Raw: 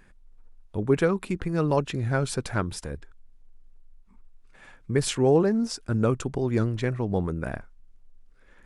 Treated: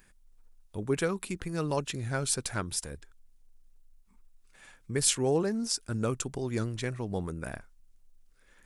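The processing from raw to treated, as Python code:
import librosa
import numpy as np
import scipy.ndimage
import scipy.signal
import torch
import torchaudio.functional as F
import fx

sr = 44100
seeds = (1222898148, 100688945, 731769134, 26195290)

y = scipy.signal.lfilter([1.0, -0.8], [1.0], x)
y = F.gain(torch.from_numpy(y), 6.5).numpy()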